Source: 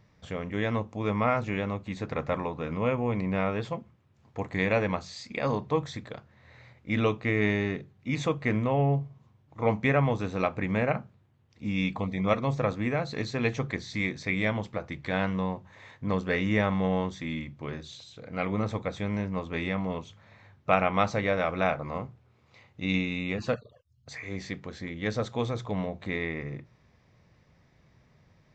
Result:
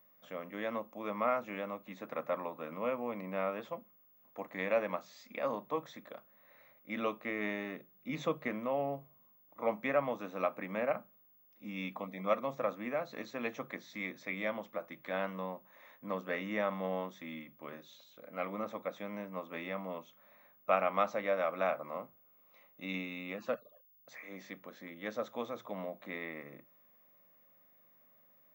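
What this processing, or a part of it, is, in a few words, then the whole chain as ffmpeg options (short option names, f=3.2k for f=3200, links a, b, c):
old television with a line whistle: -filter_complex "[0:a]highpass=f=210:w=0.5412,highpass=f=210:w=1.3066,equalizer=f=410:t=q:w=4:g=-6,equalizer=f=580:t=q:w=4:g=8,equalizer=f=1.2k:t=q:w=4:g=6,equalizer=f=4.5k:t=q:w=4:g=-9,lowpass=f=6.8k:w=0.5412,lowpass=f=6.8k:w=1.3066,aeval=exprs='val(0)+0.002*sin(2*PI*15625*n/s)':c=same,asettb=1/sr,asplit=3[a][b][c];[a]atrim=end=7.934[d];[b]atrim=start=7.93:end=8.48,asetpts=PTS-STARTPTS,afade=t=in:d=0.004:c=qsin,afade=t=out:st=0.546:d=0.004:c=qsin,equalizer=f=160:t=o:w=0.67:g=8,equalizer=f=400:t=o:w=0.67:g=5,equalizer=f=4k:t=o:w=0.67:g=4[e];[c]atrim=start=8.476[f];[d][e]acrossfade=d=0.004:c1=hsin:c2=qsin[g];[g][f]acrossfade=d=0.004:c1=qsin:c2=hsin,volume=-9dB"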